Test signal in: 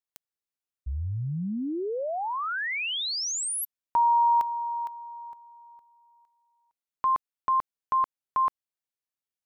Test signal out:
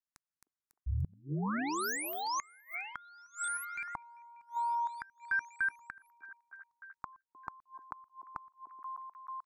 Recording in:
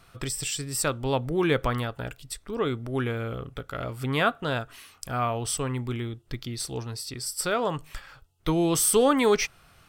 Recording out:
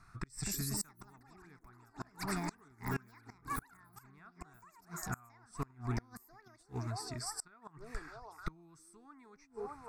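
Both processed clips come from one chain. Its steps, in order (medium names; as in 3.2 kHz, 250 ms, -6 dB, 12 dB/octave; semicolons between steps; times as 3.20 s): low-pass 7.1 kHz 12 dB/octave; ever faster or slower copies 319 ms, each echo +7 st, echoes 3; static phaser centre 1.3 kHz, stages 4; repeats whose band climbs or falls 307 ms, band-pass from 390 Hz, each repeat 0.7 oct, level -8.5 dB; inverted gate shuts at -22 dBFS, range -29 dB; trim -3 dB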